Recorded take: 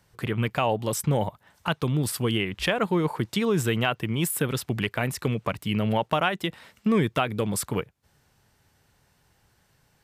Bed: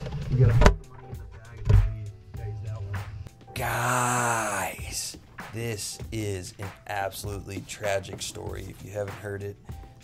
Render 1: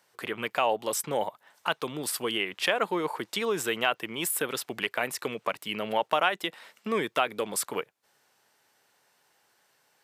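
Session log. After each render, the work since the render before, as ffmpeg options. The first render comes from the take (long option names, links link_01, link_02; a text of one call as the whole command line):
ffmpeg -i in.wav -af "highpass=430" out.wav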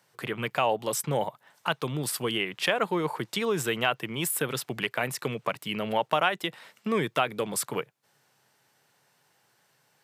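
ffmpeg -i in.wav -af "highpass=90,equalizer=frequency=130:width=1.5:gain=13.5" out.wav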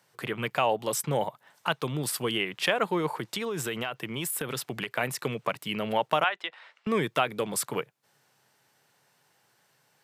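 ffmpeg -i in.wav -filter_complex "[0:a]asettb=1/sr,asplit=3[link_01][link_02][link_03];[link_01]atrim=end=3.094[link_04];[link_02]atrim=start=3.09:end=4.9,asetpts=PTS-STARTPTS,afade=type=in:duration=0.004:curve=qsin,afade=type=out:start_time=1.806:duration=0.004:curve=qsin,acompressor=threshold=-27dB:ratio=6:attack=3.2:release=140:knee=1:detection=peak[link_05];[link_03]atrim=start=4.896[link_06];[link_04][link_05]acrossfade=duration=0.004:curve1=hsin:curve2=qsin[link_07];[link_07][link_06]acrossfade=duration=0.004:curve1=qsin:curve2=hsin,asettb=1/sr,asplit=3[link_08][link_09][link_10];[link_08]atrim=end=6.244[link_11];[link_09]atrim=start=6.24:end=6.87,asetpts=PTS-STARTPTS,afade=type=in:duration=0.004:curve=qsin,afade=type=out:start_time=0.626:duration=0.004:curve=qsin,highpass=720,lowpass=3400[link_12];[link_10]atrim=start=6.866[link_13];[link_11][link_12]acrossfade=duration=0.004:curve1=hsin:curve2=qsin[link_14];[link_14][link_13]acrossfade=duration=0.004:curve1=qsin:curve2=hsin" out.wav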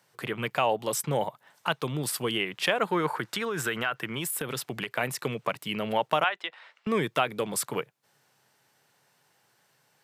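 ffmpeg -i in.wav -filter_complex "[0:a]asettb=1/sr,asplit=3[link_01][link_02][link_03];[link_01]atrim=end=2.874[link_04];[link_02]atrim=start=2.87:end=4.19,asetpts=PTS-STARTPTS,afade=type=in:duration=0.004:curve=qsin,afade=type=out:start_time=1.316:duration=0.004:curve=qsin,equalizer=frequency=1500:width=1.9:gain=9.5[link_05];[link_03]atrim=start=4.186[link_06];[link_04][link_05]acrossfade=duration=0.004:curve1=hsin:curve2=qsin[link_07];[link_07][link_06]acrossfade=duration=0.004:curve1=qsin:curve2=hsin" out.wav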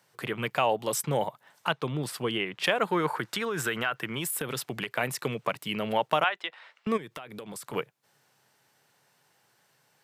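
ffmpeg -i in.wav -filter_complex "[0:a]asettb=1/sr,asplit=3[link_01][link_02][link_03];[link_01]atrim=end=1.714[link_04];[link_02]atrim=start=1.71:end=2.64,asetpts=PTS-STARTPTS,afade=type=in:duration=0.004:curve=qsin,afade=type=out:start_time=0.926:duration=0.004:curve=qsin,lowpass=frequency=3400:poles=1[link_05];[link_03]atrim=start=2.636[link_06];[link_04][link_05]acrossfade=duration=0.004:curve1=hsin:curve2=qsin[link_07];[link_07][link_06]acrossfade=duration=0.004:curve1=qsin:curve2=hsin,asplit=3[link_08][link_09][link_10];[link_08]afade=type=out:start_time=6.96:duration=0.02[link_11];[link_09]acompressor=threshold=-36dB:ratio=20:attack=3.2:release=140:knee=1:detection=peak,afade=type=in:start_time=6.96:duration=0.02,afade=type=out:start_time=7.72:duration=0.02[link_12];[link_10]afade=type=in:start_time=7.72:duration=0.02[link_13];[link_11][link_12][link_13]amix=inputs=3:normalize=0" out.wav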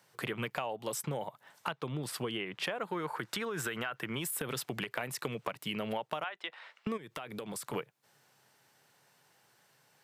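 ffmpeg -i in.wav -filter_complex "[0:a]acrossover=split=2000[link_01][link_02];[link_02]alimiter=limit=-22.5dB:level=0:latency=1:release=250[link_03];[link_01][link_03]amix=inputs=2:normalize=0,acompressor=threshold=-32dB:ratio=12" out.wav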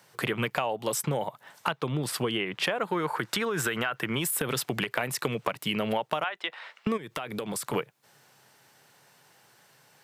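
ffmpeg -i in.wav -af "volume=7.5dB" out.wav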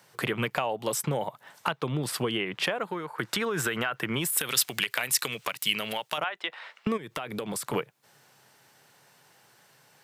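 ffmpeg -i in.wav -filter_complex "[0:a]asettb=1/sr,asplit=3[link_01][link_02][link_03];[link_01]atrim=end=4.374[link_04];[link_02]atrim=start=4.37:end=6.18,asetpts=PTS-STARTPTS,afade=type=in:duration=0.004:curve=qsin,afade=type=out:start_time=1.806:duration=0.004:curve=qsin,tiltshelf=frequency=1500:gain=-9.5[link_05];[link_03]atrim=start=6.176[link_06];[link_04][link_05]acrossfade=duration=0.004:curve1=hsin:curve2=qsin[link_07];[link_07][link_06]acrossfade=duration=0.004:curve1=qsin:curve2=hsin,asplit=2[link_08][link_09];[link_08]atrim=end=3.18,asetpts=PTS-STARTPTS,afade=type=out:start_time=2.67:duration=0.51:silence=0.211349[link_10];[link_09]atrim=start=3.18,asetpts=PTS-STARTPTS,afade=type=in:duration=0.004:curve=hsin:silence=0.211349[link_11];[link_10][link_11]concat=n=2:v=0:a=1" out.wav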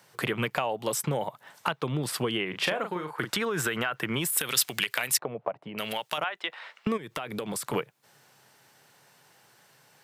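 ffmpeg -i in.wav -filter_complex "[0:a]asettb=1/sr,asplit=3[link_01][link_02][link_03];[link_01]atrim=end=2.494[link_04];[link_02]atrim=start=2.49:end=3.31,asetpts=PTS-STARTPTS,afade=type=in:duration=0.004:curve=qsin,afade=type=out:start_time=0.816:duration=0.004:curve=qsin,asplit=2[link_05][link_06];[link_06]adelay=39,volume=-7dB[link_07];[link_05][link_07]amix=inputs=2:normalize=0,atrim=end_sample=36162[link_08];[link_03]atrim=start=3.306[link_09];[link_04][link_08]acrossfade=duration=0.004:curve1=hsin:curve2=qsin[link_10];[link_10][link_09]acrossfade=duration=0.004:curve1=qsin:curve2=hsin,asettb=1/sr,asplit=3[link_11][link_12][link_13];[link_11]atrim=end=5.184[link_14];[link_12]atrim=start=5.18:end=5.78,asetpts=PTS-STARTPTS,afade=type=in:duration=0.004:curve=qsin,afade=type=out:start_time=0.596:duration=0.004:curve=qsin,lowpass=frequency=690:width_type=q:width=3[link_15];[link_13]atrim=start=5.776[link_16];[link_14][link_15]acrossfade=duration=0.004:curve1=hsin:curve2=qsin[link_17];[link_17][link_16]acrossfade=duration=0.004:curve1=qsin:curve2=hsin" out.wav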